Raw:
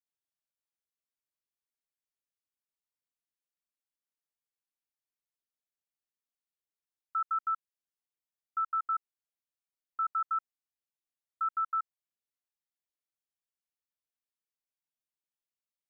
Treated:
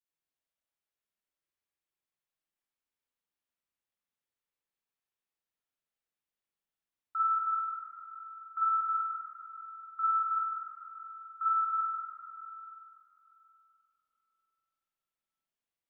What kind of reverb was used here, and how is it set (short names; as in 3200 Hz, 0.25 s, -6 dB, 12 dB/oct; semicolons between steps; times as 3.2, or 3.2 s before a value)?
spring tank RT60 3.1 s, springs 41/47 ms, chirp 50 ms, DRR -6 dB; gain -3.5 dB